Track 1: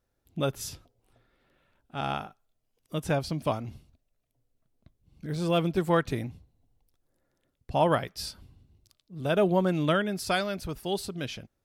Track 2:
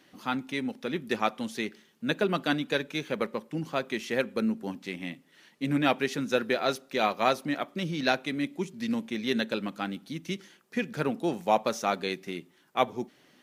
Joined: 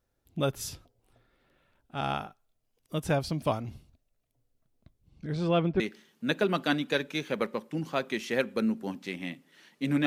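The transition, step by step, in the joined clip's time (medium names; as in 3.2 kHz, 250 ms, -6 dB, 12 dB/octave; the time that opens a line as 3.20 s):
track 1
5.09–5.80 s: low-pass 9.3 kHz -> 1.8 kHz
5.80 s: go over to track 2 from 1.60 s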